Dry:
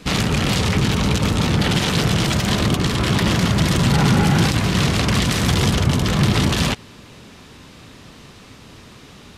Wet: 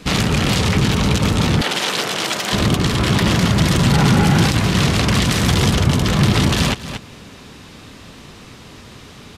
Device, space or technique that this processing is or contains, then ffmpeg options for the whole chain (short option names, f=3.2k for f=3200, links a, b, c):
ducked delay: -filter_complex "[0:a]asplit=3[a][b][c];[b]adelay=231,volume=-4.5dB[d];[c]apad=whole_len=423770[e];[d][e]sidechaincompress=threshold=-33dB:ratio=8:attack=16:release=250[f];[a][f]amix=inputs=2:normalize=0,asettb=1/sr,asplit=3[g][h][i];[g]atrim=end=1.614[j];[h]atrim=start=1.61:end=2.53,asetpts=PTS-STARTPTS,afade=t=in:d=0.004:c=qsin,afade=t=out:st=0.916:d=0.004:c=qsin,highpass=430[k];[i]atrim=start=2.526[l];[j][k]acrossfade=d=0.004:c1=hsin:c2=qsin[m];[m][l]acrossfade=d=0.004:c1=qsin:c2=hsin,volume=2dB"